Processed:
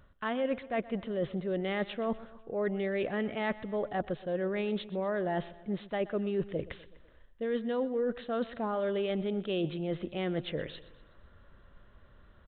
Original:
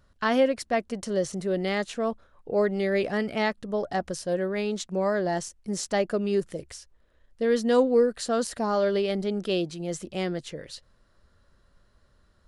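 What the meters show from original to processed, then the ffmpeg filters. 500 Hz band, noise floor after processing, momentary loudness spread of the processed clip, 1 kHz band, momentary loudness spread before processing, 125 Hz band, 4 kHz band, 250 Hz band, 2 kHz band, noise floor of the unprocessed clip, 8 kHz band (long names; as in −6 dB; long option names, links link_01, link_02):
−7.0 dB, −60 dBFS, 6 LU, −7.0 dB, 11 LU, −3.5 dB, −7.5 dB, −5.5 dB, −6.5 dB, −64 dBFS, below −40 dB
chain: -af "areverse,acompressor=threshold=-35dB:ratio=6,areverse,aecho=1:1:124|248|372|496:0.126|0.0667|0.0354|0.0187,aresample=8000,aresample=44100,volume=5dB"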